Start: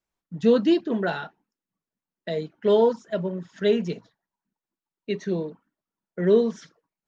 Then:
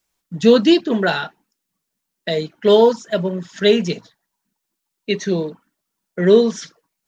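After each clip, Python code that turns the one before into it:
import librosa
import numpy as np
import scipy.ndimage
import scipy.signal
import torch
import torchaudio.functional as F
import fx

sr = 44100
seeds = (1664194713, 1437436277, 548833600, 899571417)

y = fx.high_shelf(x, sr, hz=2500.0, db=11.0)
y = y * 10.0 ** (6.5 / 20.0)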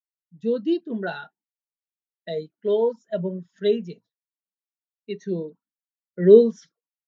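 y = fx.rider(x, sr, range_db=5, speed_s=0.5)
y = fx.spectral_expand(y, sr, expansion=1.5)
y = y * 10.0 ** (-4.0 / 20.0)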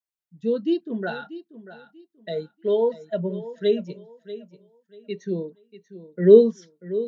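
y = fx.echo_feedback(x, sr, ms=638, feedback_pct=25, wet_db=-15)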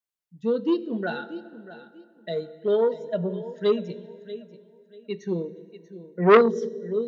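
y = fx.rev_plate(x, sr, seeds[0], rt60_s=2.7, hf_ratio=0.6, predelay_ms=0, drr_db=14.5)
y = fx.transformer_sat(y, sr, knee_hz=1100.0)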